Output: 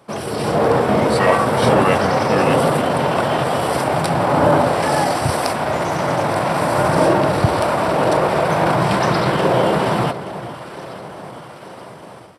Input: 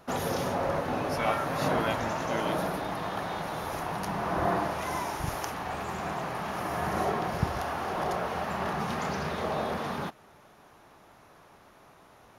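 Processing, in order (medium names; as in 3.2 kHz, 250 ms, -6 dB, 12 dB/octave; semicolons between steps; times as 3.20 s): high-pass 110 Hz 24 dB/octave; echo whose repeats swap between lows and highs 441 ms, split 1.2 kHz, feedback 71%, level -12.5 dB; in parallel at -3.5 dB: hard clipper -24 dBFS, distortion -17 dB; on the sum: pitch shift -3 st; level rider gain up to 11.5 dB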